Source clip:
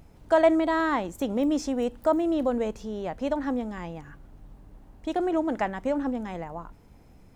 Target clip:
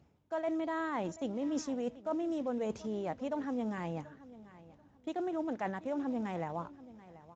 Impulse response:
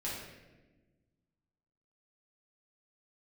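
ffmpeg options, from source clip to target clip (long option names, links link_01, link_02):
-af "agate=range=-9dB:threshold=-40dB:ratio=16:detection=peak,areverse,acompressor=threshold=-33dB:ratio=8,areverse,acrusher=bits=8:mode=log:mix=0:aa=0.000001,aecho=1:1:735|1470:0.126|0.029" -ar 16000 -c:a libspeex -b:a 17k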